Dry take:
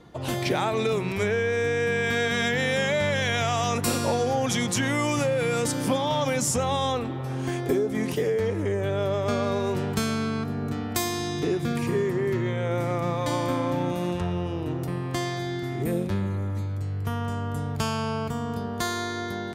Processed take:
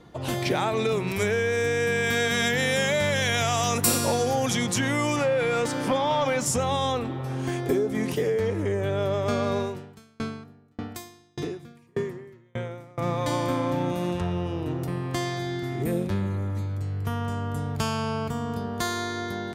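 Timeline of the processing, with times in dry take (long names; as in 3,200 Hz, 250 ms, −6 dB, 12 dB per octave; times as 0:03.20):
0:01.07–0:04.50: high-shelf EQ 6,900 Hz +12 dB
0:05.16–0:06.46: mid-hump overdrive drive 11 dB, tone 1,900 Hz, clips at −13 dBFS
0:09.61–0:12.98: tremolo with a ramp in dB decaying 1.7 Hz, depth 38 dB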